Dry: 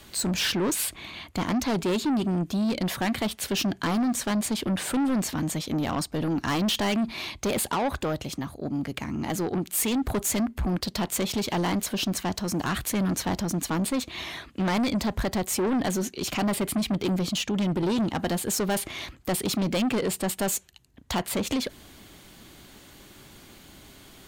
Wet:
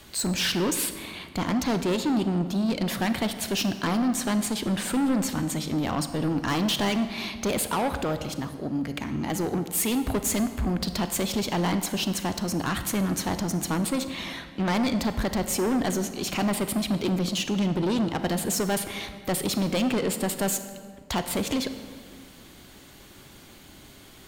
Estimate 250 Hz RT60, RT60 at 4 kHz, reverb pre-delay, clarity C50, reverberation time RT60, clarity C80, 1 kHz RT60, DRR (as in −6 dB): 2.2 s, 1.3 s, 31 ms, 10.0 dB, 1.9 s, 11.5 dB, 1.8 s, 9.5 dB